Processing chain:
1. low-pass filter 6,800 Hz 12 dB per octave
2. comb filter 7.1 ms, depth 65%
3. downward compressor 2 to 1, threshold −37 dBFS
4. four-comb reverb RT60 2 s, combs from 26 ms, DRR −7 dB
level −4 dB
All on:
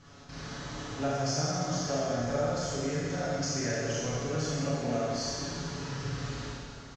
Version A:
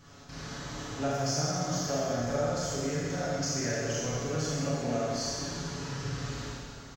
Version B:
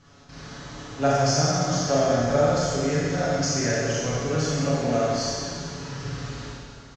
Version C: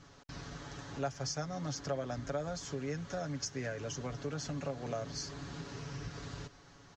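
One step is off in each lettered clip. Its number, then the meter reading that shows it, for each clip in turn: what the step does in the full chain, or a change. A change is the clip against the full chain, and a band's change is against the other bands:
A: 1, 8 kHz band +2.0 dB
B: 3, average gain reduction 5.0 dB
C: 4, change in crest factor +3.0 dB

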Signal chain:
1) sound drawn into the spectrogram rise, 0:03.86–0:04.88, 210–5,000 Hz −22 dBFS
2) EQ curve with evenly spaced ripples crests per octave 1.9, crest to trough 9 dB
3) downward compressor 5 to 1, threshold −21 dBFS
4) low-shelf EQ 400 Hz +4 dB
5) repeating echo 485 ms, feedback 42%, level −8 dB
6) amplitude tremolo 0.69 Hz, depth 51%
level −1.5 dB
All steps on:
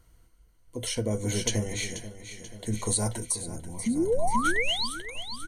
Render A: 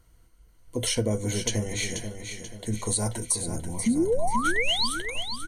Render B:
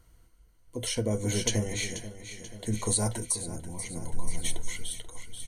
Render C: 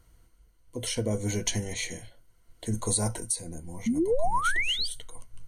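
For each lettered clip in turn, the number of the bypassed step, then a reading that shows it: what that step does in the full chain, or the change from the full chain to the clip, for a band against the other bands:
6, change in momentary loudness spread −2 LU
1, 1 kHz band −7.0 dB
5, change in momentary loudness spread +1 LU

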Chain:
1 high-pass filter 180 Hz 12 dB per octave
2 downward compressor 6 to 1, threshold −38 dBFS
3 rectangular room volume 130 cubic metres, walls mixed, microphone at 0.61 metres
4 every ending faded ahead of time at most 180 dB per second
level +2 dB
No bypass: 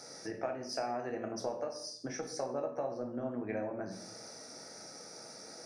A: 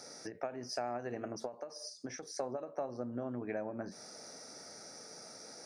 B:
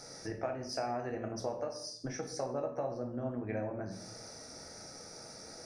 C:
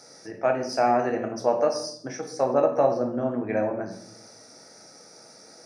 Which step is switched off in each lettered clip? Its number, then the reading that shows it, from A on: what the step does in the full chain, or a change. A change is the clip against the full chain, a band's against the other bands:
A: 3, change in crest factor +1.5 dB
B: 1, 125 Hz band +6.5 dB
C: 2, change in crest factor +1.5 dB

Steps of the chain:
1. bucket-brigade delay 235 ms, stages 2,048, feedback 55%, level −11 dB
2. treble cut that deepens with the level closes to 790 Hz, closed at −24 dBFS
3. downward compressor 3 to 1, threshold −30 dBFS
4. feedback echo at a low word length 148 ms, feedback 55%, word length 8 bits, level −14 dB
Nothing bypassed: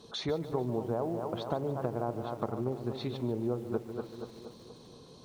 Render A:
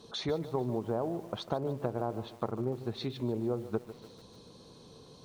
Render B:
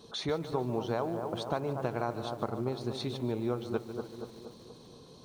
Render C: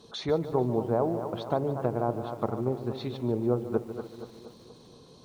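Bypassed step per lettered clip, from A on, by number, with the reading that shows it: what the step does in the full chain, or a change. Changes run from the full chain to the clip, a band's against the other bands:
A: 1, change in momentary loudness spread +4 LU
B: 2, 2 kHz band +5.5 dB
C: 3, change in momentary loudness spread −2 LU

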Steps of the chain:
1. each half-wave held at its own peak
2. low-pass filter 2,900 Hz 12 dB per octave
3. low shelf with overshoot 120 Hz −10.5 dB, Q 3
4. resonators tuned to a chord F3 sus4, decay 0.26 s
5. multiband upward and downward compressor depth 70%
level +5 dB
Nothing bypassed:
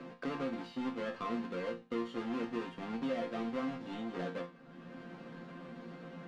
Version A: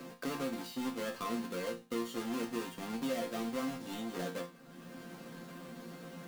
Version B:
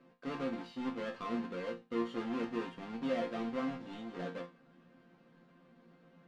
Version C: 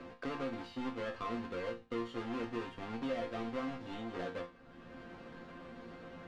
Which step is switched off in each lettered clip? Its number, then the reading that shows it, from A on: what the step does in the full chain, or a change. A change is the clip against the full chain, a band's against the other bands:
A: 2, 4 kHz band +5.0 dB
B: 5, change in momentary loudness spread −4 LU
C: 3, change in integrated loudness −1.5 LU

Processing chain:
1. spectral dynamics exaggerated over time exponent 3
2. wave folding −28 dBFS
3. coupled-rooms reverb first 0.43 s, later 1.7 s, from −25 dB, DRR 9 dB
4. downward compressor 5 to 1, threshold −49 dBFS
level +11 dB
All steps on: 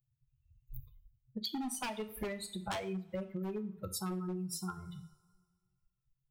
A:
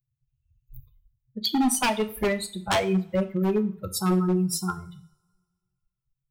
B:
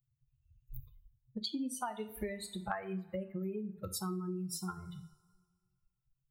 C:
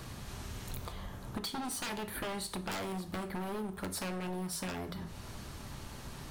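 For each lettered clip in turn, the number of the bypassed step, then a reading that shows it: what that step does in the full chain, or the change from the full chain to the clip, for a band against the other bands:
4, average gain reduction 11.0 dB
2, distortion level −4 dB
1, change in momentary loudness spread −6 LU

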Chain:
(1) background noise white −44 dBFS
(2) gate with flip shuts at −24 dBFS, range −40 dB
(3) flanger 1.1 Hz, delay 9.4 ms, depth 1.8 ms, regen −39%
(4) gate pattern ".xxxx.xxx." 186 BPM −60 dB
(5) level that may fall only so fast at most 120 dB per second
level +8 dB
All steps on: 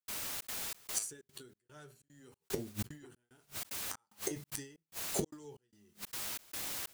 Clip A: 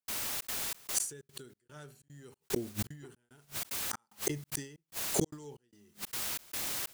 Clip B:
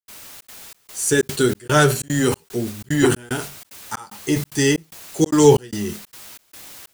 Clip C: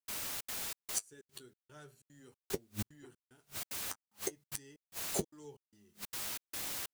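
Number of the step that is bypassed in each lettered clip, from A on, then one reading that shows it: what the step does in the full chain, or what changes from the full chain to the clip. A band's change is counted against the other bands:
3, change in integrated loudness +4.0 LU
2, change in momentary loudness spread +5 LU
5, change in momentary loudness spread +2 LU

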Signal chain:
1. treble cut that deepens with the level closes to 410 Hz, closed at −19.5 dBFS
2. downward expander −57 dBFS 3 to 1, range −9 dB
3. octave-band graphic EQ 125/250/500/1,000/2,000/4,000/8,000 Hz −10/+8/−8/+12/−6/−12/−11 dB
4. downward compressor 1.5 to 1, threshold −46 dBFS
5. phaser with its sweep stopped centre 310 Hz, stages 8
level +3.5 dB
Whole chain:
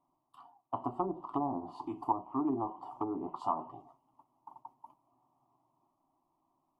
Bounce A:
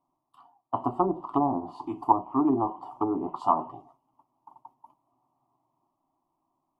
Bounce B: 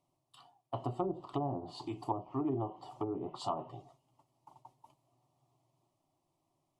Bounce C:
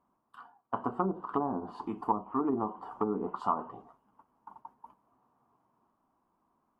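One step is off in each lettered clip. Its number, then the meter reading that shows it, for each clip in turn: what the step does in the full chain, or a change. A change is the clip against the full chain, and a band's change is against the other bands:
4, average gain reduction 6.5 dB
3, change in crest factor −2.5 dB
5, 500 Hz band +2.5 dB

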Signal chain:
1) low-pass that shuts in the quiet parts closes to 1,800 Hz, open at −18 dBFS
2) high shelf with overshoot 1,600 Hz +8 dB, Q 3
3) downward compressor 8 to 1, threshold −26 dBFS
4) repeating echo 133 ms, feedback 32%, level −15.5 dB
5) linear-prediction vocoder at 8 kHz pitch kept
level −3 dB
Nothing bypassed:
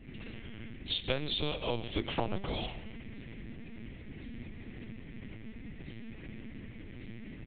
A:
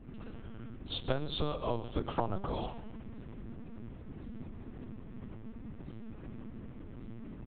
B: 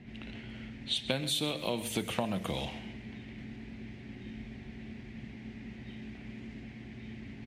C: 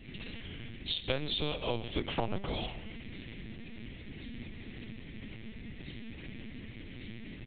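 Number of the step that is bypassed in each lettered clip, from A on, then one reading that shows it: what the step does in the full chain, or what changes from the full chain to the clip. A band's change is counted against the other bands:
2, change in crest factor −2.0 dB
5, 250 Hz band +2.5 dB
1, change in momentary loudness spread −1 LU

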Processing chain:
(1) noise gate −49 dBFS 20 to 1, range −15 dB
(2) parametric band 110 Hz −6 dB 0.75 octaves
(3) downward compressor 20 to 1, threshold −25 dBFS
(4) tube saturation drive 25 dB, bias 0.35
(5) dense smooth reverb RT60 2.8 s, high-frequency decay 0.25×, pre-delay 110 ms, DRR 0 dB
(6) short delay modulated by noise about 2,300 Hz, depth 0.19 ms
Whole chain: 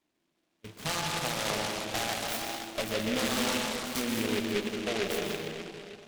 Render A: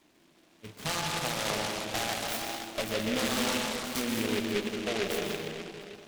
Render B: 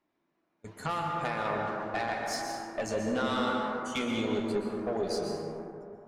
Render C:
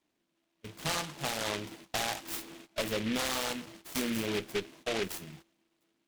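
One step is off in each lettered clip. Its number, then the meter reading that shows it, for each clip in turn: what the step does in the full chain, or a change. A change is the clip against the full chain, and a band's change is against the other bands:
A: 1, change in momentary loudness spread +1 LU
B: 6, 8 kHz band −8.5 dB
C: 5, change in momentary loudness spread +2 LU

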